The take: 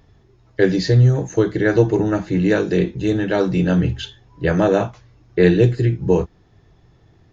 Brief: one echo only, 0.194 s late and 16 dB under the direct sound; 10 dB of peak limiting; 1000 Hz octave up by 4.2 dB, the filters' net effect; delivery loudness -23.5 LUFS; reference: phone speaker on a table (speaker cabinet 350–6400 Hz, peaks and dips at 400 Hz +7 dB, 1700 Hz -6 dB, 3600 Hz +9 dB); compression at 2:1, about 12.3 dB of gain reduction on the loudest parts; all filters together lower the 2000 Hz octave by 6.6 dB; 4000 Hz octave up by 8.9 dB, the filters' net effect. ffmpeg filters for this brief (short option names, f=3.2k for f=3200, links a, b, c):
-af "equalizer=f=1k:t=o:g=7.5,equalizer=f=2k:t=o:g=-8.5,equalizer=f=4k:t=o:g=6,acompressor=threshold=-32dB:ratio=2,alimiter=limit=-24dB:level=0:latency=1,highpass=f=350:w=0.5412,highpass=f=350:w=1.3066,equalizer=f=400:t=q:w=4:g=7,equalizer=f=1.7k:t=q:w=4:g=-6,equalizer=f=3.6k:t=q:w=4:g=9,lowpass=f=6.4k:w=0.5412,lowpass=f=6.4k:w=1.3066,aecho=1:1:194:0.158,volume=10.5dB"